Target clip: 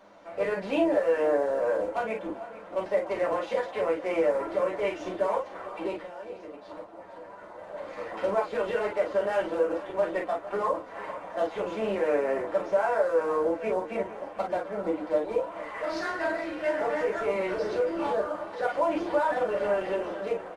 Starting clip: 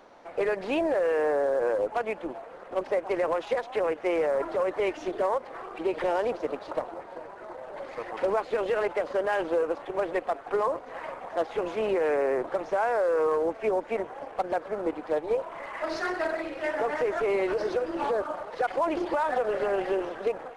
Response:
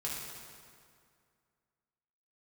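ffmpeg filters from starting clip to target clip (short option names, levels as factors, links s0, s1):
-filter_complex "[0:a]asplit=3[s0][s1][s2];[s0]afade=t=out:st=5.95:d=0.02[s3];[s1]acompressor=threshold=0.01:ratio=4,afade=t=in:st=5.95:d=0.02,afade=t=out:st=7.56:d=0.02[s4];[s2]afade=t=in:st=7.56:d=0.02[s5];[s3][s4][s5]amix=inputs=3:normalize=0,aecho=1:1:451:0.158[s6];[1:a]atrim=start_sample=2205,afade=t=out:st=0.13:d=0.01,atrim=end_sample=6174,asetrate=61740,aresample=44100[s7];[s6][s7]afir=irnorm=-1:irlink=0,volume=1.26"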